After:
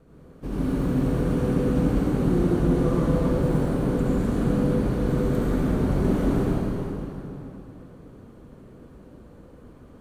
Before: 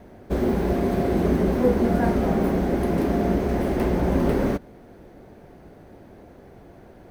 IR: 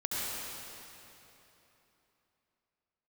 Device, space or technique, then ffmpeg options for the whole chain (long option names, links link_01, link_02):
slowed and reverbed: -filter_complex "[0:a]asetrate=31311,aresample=44100[link_01];[1:a]atrim=start_sample=2205[link_02];[link_01][link_02]afir=irnorm=-1:irlink=0,volume=-7dB"